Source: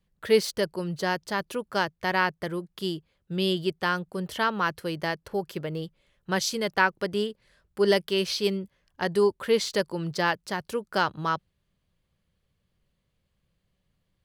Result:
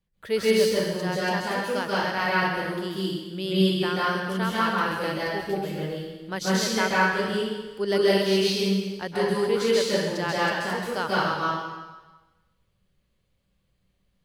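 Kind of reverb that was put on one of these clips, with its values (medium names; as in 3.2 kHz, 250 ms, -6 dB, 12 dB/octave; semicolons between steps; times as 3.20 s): plate-style reverb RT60 1.2 s, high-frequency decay 1×, pre-delay 120 ms, DRR -7.5 dB; trim -5.5 dB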